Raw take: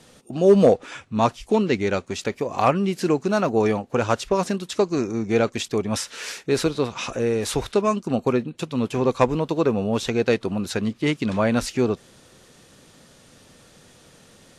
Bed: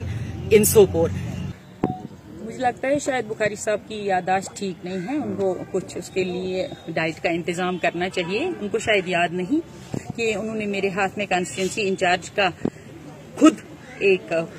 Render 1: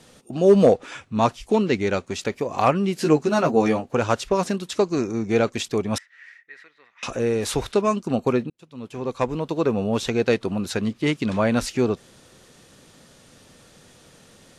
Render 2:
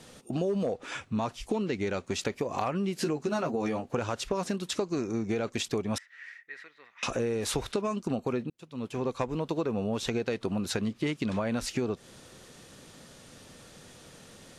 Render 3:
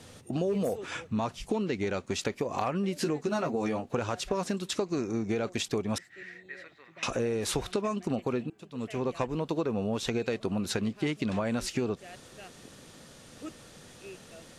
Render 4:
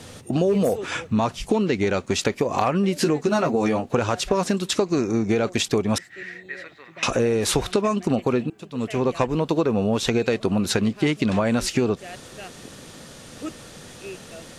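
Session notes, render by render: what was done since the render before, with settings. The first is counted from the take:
0:02.98–0:03.89: double-tracking delay 13 ms −3 dB; 0:05.98–0:07.03: resonant band-pass 1,900 Hz, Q 15; 0:08.50–0:09.81: fade in
brickwall limiter −12.5 dBFS, peak gain reduction 7 dB; downward compressor, threshold −27 dBFS, peak gain reduction 11 dB
mix in bed −29 dB
level +9 dB

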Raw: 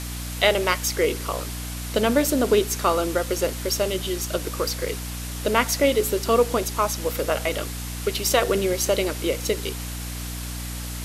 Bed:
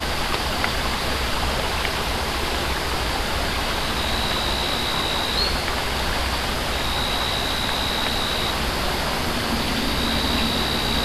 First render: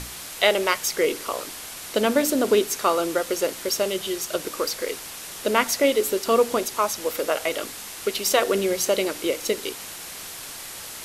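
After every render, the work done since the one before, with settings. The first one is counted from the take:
mains-hum notches 60/120/180/240/300 Hz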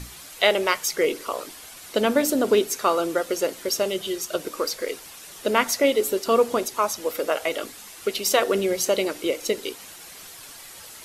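broadband denoise 8 dB, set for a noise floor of −38 dBFS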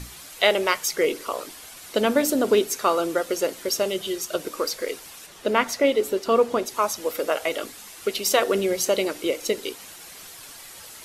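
0:05.26–0:06.68: high-shelf EQ 5,700 Hz −9.5 dB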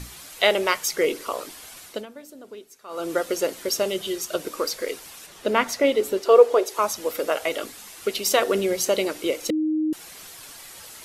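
0:01.79–0:03.15: duck −22 dB, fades 0.27 s
0:06.25–0:06.79: low shelf with overshoot 300 Hz −11.5 dB, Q 3
0:09.50–0:09.93: beep over 311 Hz −20 dBFS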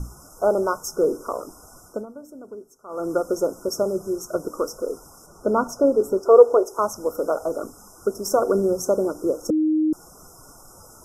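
spectral tilt −2 dB per octave
brick-wall band-stop 1,500–5,000 Hz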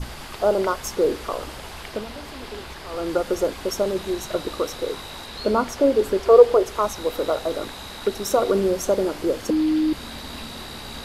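mix in bed −14 dB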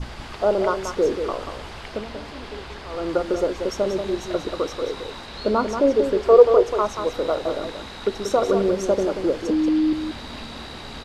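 high-frequency loss of the air 75 metres
single-tap delay 184 ms −7.5 dB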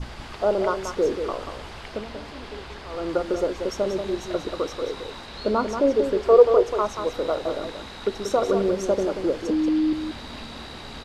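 level −2 dB

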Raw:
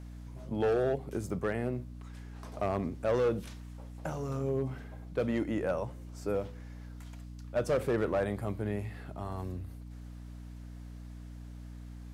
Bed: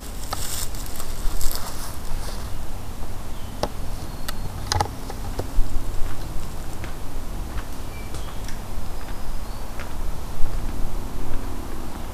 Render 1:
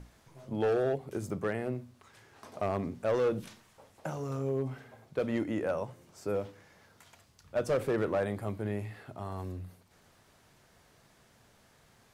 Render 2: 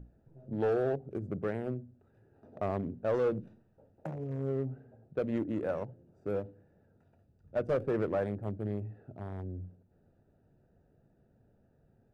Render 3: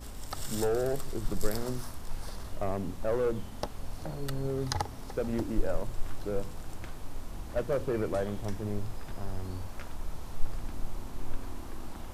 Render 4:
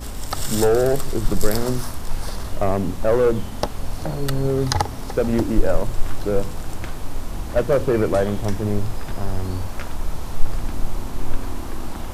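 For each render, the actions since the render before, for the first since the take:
mains-hum notches 60/120/180/240/300 Hz
adaptive Wiener filter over 41 samples; high-shelf EQ 2,300 Hz −9.5 dB
mix in bed −10.5 dB
level +12 dB; brickwall limiter −2 dBFS, peak gain reduction 2 dB

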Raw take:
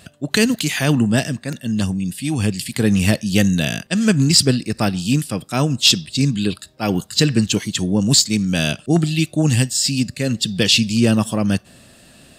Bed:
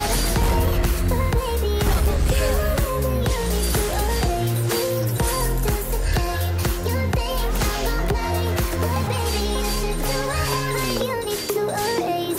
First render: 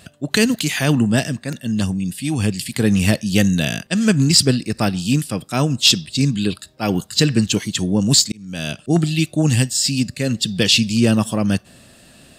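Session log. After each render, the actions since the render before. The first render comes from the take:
0:08.32–0:08.98: fade in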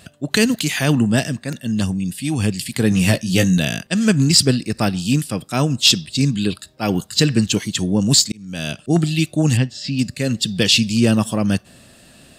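0:02.90–0:03.58: double-tracking delay 17 ms −5 dB
0:09.57–0:09.99: high-frequency loss of the air 220 metres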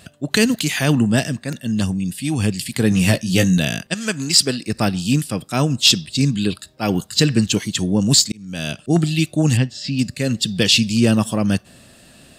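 0:03.93–0:04.67: high-pass filter 890 Hz → 360 Hz 6 dB per octave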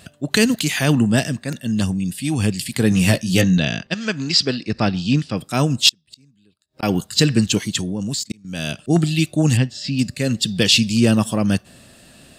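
0:03.41–0:05.37: low-pass filter 5,400 Hz 24 dB per octave
0:05.89–0:06.83: gate with flip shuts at −21 dBFS, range −37 dB
0:07.81–0:08.45: output level in coarse steps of 24 dB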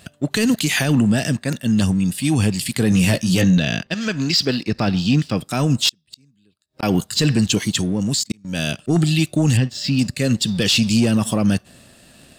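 leveller curve on the samples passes 1
brickwall limiter −9 dBFS, peak gain reduction 7 dB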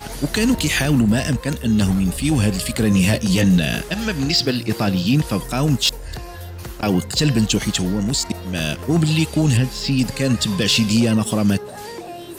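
mix in bed −10.5 dB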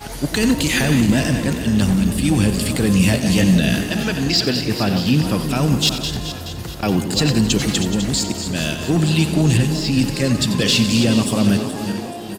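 feedback delay that plays each chunk backwards 213 ms, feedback 63%, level −9 dB
echo with shifted repeats 90 ms, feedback 63%, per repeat +31 Hz, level −12.5 dB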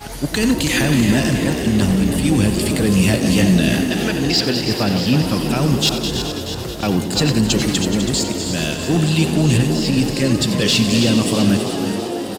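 echo with shifted repeats 327 ms, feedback 59%, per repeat +73 Hz, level −9 dB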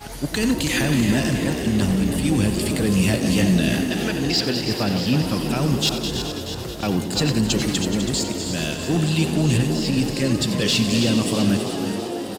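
level −4 dB

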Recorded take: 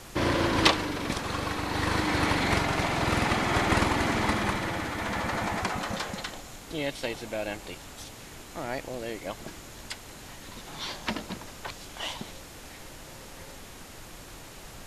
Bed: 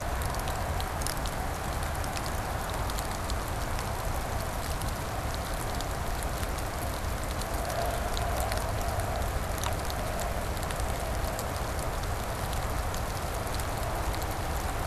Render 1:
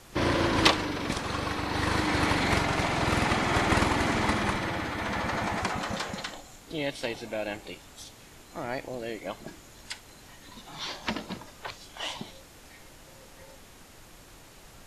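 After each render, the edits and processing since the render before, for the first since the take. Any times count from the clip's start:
noise reduction from a noise print 6 dB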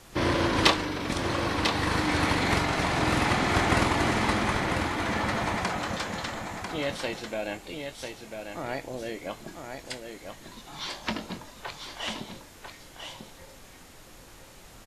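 double-tracking delay 23 ms −11.5 dB
single-tap delay 995 ms −6.5 dB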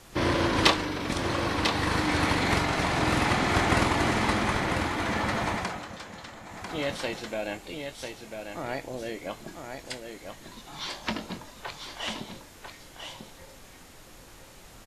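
0:05.50–0:06.80: duck −9.5 dB, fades 0.37 s linear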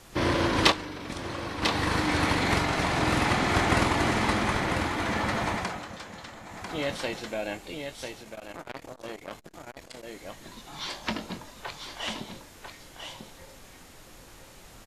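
0:00.72–0:01.62: clip gain −6.5 dB
0:08.22–0:10.07: saturating transformer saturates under 1,700 Hz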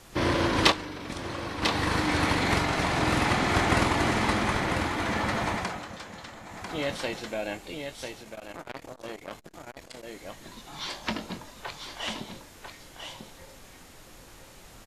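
no processing that can be heard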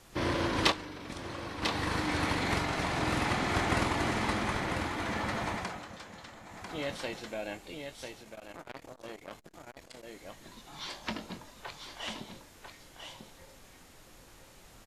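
level −5.5 dB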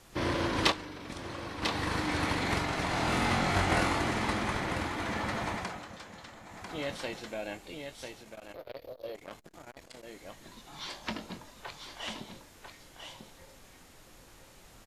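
0:02.87–0:03.99: flutter between parallel walls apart 3.7 metres, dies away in 0.29 s
0:08.54–0:09.15: drawn EQ curve 110 Hz 0 dB, 180 Hz −9 dB, 320 Hz −4 dB, 540 Hz +10 dB, 820 Hz −6 dB, 1,500 Hz −7 dB, 2,800 Hz −3 dB, 4,400 Hz +3 dB, 8,300 Hz −25 dB, 13,000 Hz +8 dB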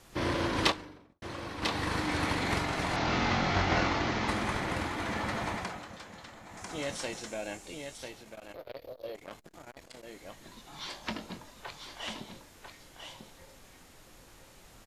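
0:00.63–0:01.22: fade out and dull
0:02.96–0:04.28: variable-slope delta modulation 32 kbit/s
0:06.57–0:07.98: flat-topped bell 7,300 Hz +9 dB 1.1 octaves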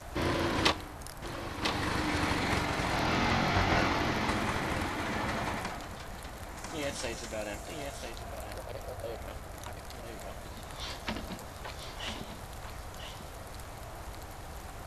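mix in bed −12.5 dB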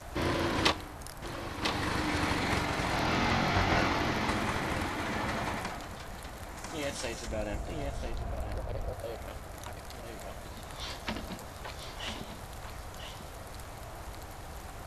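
0:07.27–0:08.93: spectral tilt −2 dB per octave

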